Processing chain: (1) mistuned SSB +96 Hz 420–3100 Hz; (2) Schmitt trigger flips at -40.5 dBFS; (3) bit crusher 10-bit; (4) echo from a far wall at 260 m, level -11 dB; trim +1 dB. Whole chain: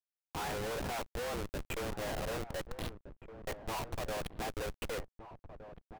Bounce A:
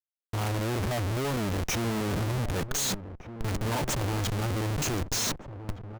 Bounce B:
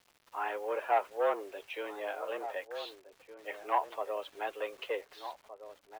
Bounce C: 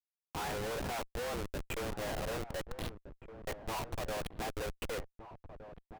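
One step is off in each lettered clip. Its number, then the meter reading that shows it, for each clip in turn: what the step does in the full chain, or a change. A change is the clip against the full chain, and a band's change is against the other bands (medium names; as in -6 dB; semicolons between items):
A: 1, 125 Hz band +7.5 dB; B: 2, crest factor change +10.0 dB; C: 3, distortion -26 dB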